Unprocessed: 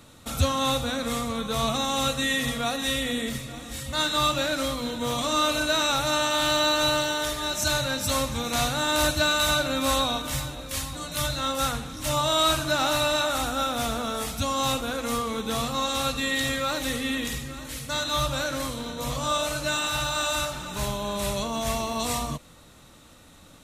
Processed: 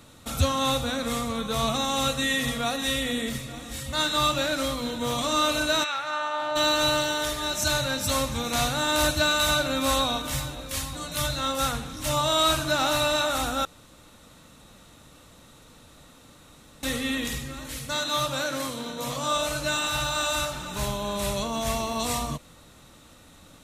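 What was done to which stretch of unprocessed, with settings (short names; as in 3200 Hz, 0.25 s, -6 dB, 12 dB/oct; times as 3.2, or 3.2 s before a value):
5.83–6.55 band-pass 2100 Hz -> 720 Hz, Q 1.3
13.65–16.83 room tone
17.92–19.33 HPF 150 Hz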